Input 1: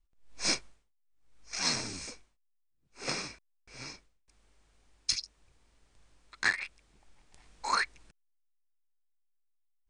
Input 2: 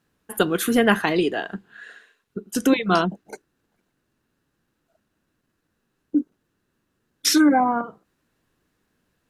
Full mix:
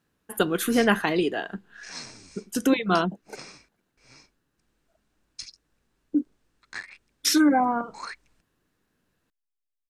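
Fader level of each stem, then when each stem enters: −9.0, −3.0 decibels; 0.30, 0.00 seconds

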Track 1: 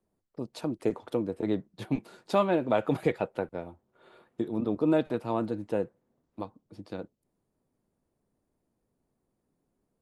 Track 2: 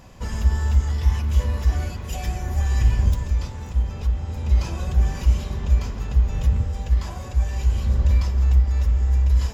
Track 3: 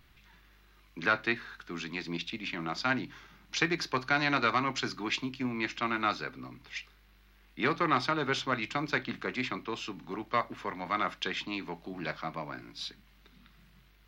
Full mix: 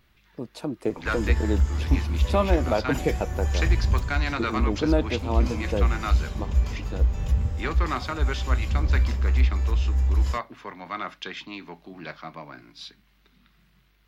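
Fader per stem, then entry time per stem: +1.5, −3.5, −1.5 decibels; 0.00, 0.85, 0.00 seconds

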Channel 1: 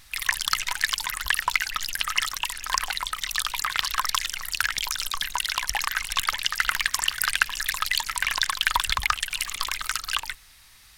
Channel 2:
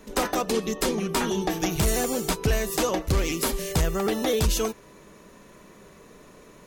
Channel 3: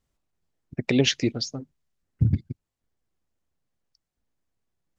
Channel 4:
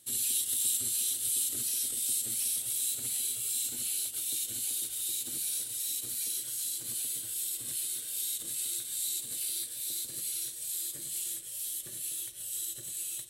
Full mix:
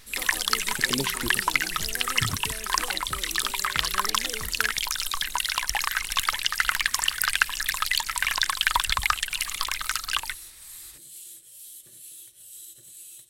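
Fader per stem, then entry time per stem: 0.0, −16.5, −10.0, −7.5 decibels; 0.00, 0.00, 0.00, 0.00 seconds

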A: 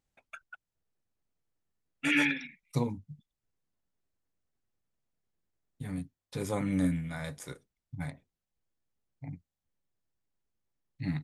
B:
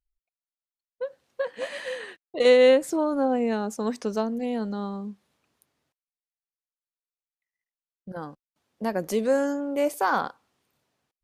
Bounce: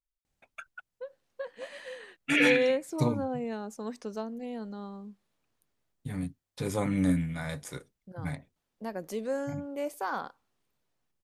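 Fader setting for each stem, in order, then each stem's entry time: +2.5, −9.5 decibels; 0.25, 0.00 seconds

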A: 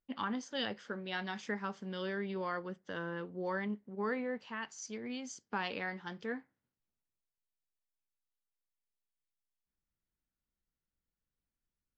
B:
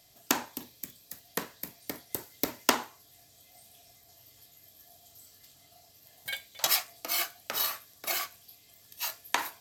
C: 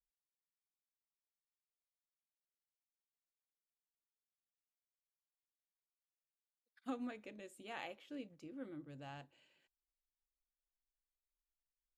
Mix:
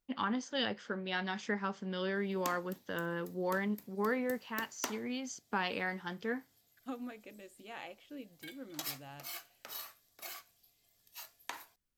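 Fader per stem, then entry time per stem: +2.5, −14.5, +0.5 decibels; 0.00, 2.15, 0.00 seconds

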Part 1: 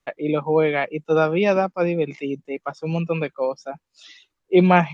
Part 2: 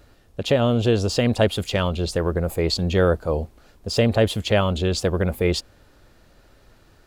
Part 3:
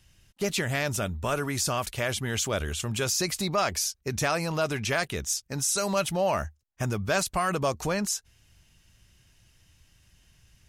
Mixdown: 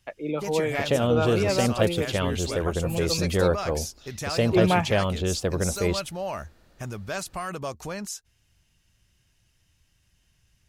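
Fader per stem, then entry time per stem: −7.0, −4.5, −6.0 decibels; 0.00, 0.40, 0.00 seconds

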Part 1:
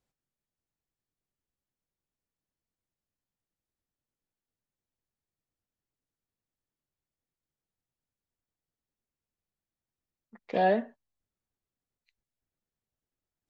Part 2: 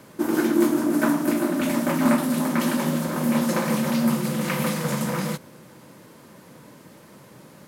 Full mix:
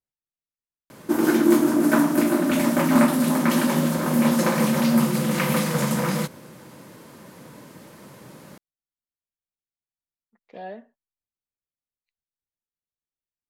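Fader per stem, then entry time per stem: −12.5, +2.5 decibels; 0.00, 0.90 seconds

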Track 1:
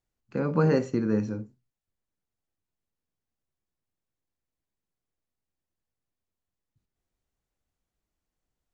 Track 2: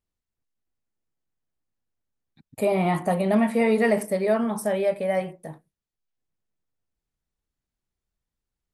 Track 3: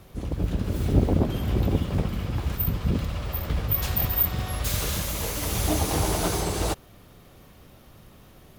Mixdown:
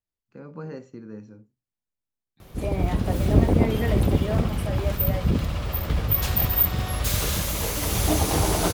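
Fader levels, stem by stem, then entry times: −14.0, −8.5, +2.5 decibels; 0.00, 0.00, 2.40 seconds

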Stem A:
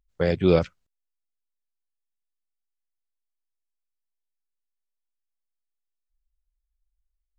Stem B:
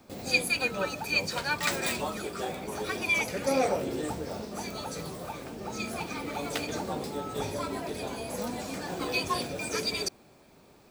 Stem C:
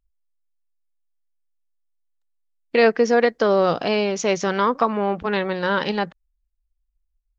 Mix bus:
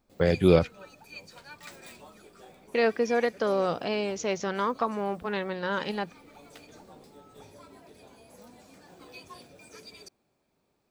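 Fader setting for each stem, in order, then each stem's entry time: −0.5, −17.5, −8.5 decibels; 0.00, 0.00, 0.00 seconds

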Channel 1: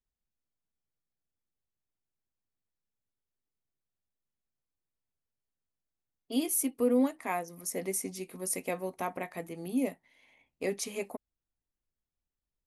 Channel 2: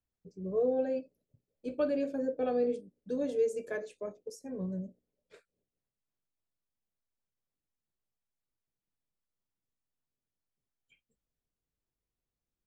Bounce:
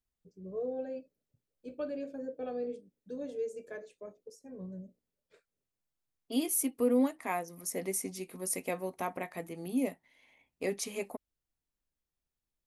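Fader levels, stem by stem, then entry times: −1.0, −7.0 decibels; 0.00, 0.00 seconds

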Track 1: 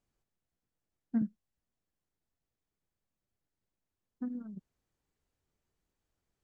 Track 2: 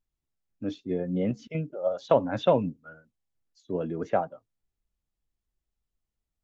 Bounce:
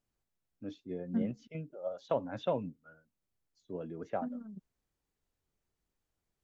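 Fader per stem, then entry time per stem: −2.0, −10.5 decibels; 0.00, 0.00 seconds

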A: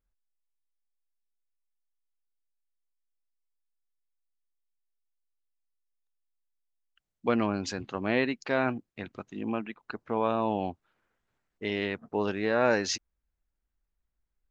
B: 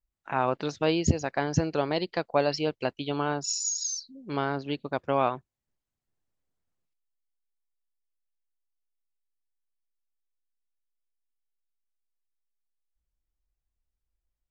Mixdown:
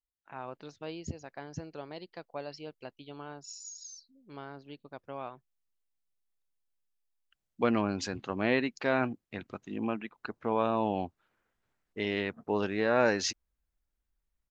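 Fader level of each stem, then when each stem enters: −1.0, −15.5 decibels; 0.35, 0.00 seconds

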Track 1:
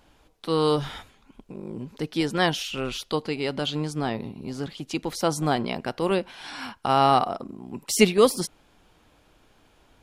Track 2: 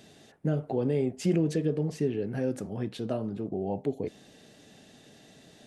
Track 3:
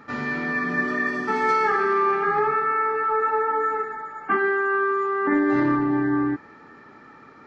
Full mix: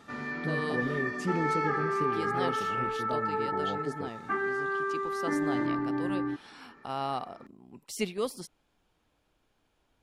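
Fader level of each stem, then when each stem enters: −14.0, −6.0, −9.0 decibels; 0.00, 0.00, 0.00 seconds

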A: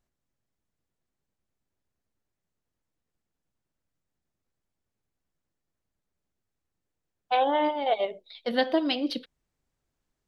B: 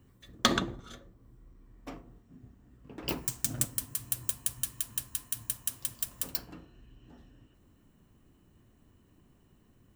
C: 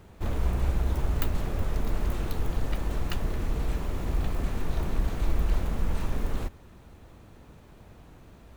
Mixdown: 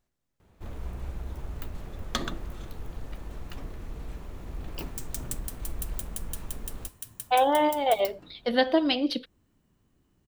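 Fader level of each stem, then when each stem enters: +2.0, −6.0, −10.0 decibels; 0.00, 1.70, 0.40 seconds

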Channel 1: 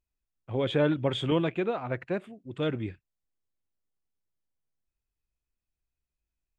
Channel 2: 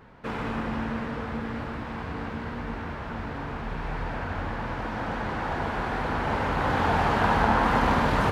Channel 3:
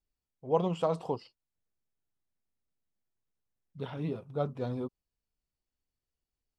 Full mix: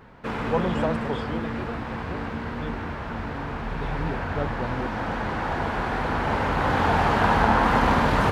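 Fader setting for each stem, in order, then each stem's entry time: −9.5, +2.5, +2.0 decibels; 0.00, 0.00, 0.00 seconds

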